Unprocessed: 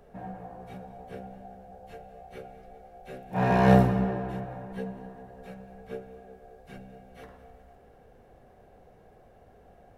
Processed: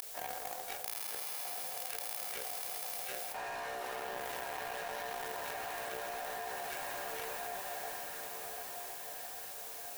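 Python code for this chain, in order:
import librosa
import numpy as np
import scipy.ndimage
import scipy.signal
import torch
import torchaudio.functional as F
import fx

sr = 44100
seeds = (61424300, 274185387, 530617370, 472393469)

p1 = scipy.signal.sosfilt(scipy.signal.butter(4, 380.0, 'highpass', fs=sr, output='sos'), x)
p2 = fx.quant_dither(p1, sr, seeds[0], bits=8, dither='triangular')
p3 = p1 + F.gain(torch.from_numpy(p2), -12.0).numpy()
p4 = np.diff(p3, prepend=0.0)
p5 = fx.echo_diffused(p4, sr, ms=1299, feedback_pct=41, wet_db=-12)
p6 = fx.leveller(p5, sr, passes=5)
p7 = fx.high_shelf(p6, sr, hz=3400.0, db=-10.0)
p8 = fx.gate_flip(p7, sr, shuts_db=-40.0, range_db=-42)
p9 = fx.leveller(p8, sr, passes=3)
p10 = fx.echo_diffused(p9, sr, ms=1142, feedback_pct=48, wet_db=-14.0)
p11 = fx.env_flatten(p10, sr, amount_pct=100)
y = F.gain(torch.from_numpy(p11), 9.5).numpy()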